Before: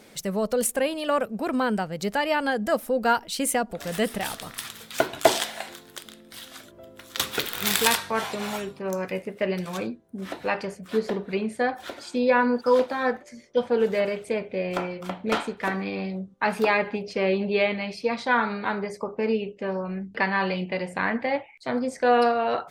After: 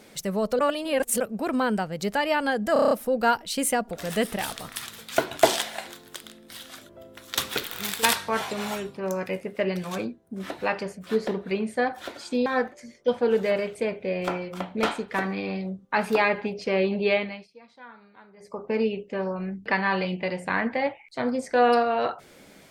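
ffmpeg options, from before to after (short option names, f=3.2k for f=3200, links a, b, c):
-filter_complex "[0:a]asplit=13[a][b][c][d][e][f][g][h][i][j][k][l][m];[a]atrim=end=0.592[n];[b]atrim=start=0.588:end=1.202,asetpts=PTS-STARTPTS,areverse[o];[c]atrim=start=1.198:end=2.762[p];[d]atrim=start=2.728:end=2.762[q];[e]atrim=start=2.728:end=2.762[r];[f]atrim=start=2.728:end=2.762[s];[g]atrim=start=2.728:end=2.762[t];[h]atrim=start=2.728:end=2.762[u];[i]atrim=start=2.728:end=7.85,asetpts=PTS-STARTPTS,afade=t=out:st=4.542:d=0.58:silence=0.266073[v];[j]atrim=start=7.85:end=12.282,asetpts=PTS-STARTPTS,afade=t=in:d=0.004:c=hsin:silence=0.266073[w];[k]atrim=start=12.948:end=17.97,asetpts=PTS-STARTPTS,afade=t=out:st=4.682:d=0.34:silence=0.0630957[x];[l]atrim=start=17.97:end=18.85,asetpts=PTS-STARTPTS,volume=-24dB[y];[m]atrim=start=18.85,asetpts=PTS-STARTPTS,afade=t=in:d=0.34:silence=0.0630957[z];[n][o]acrossfade=d=0.004:c1=hsin:c2=hsin[aa];[aa][p]acrossfade=d=0.004:c1=hsin:c2=hsin[ab];[ab][q]acrossfade=d=0.004:c1=hsin:c2=hsin[ac];[ac][r]acrossfade=d=0.004:c1=hsin:c2=hsin[ad];[ad][s]acrossfade=d=0.004:c1=hsin:c2=hsin[ae];[ae][t]acrossfade=d=0.004:c1=hsin:c2=hsin[af];[af][u]acrossfade=d=0.004:c1=hsin:c2=hsin[ag];[v][w]concat=n=2:v=0:a=1[ah];[ag][ah]acrossfade=d=0.004:c1=hsin:c2=hsin[ai];[x][y][z]concat=n=3:v=0:a=1[aj];[ai][aj]acrossfade=d=0.004:c1=hsin:c2=hsin"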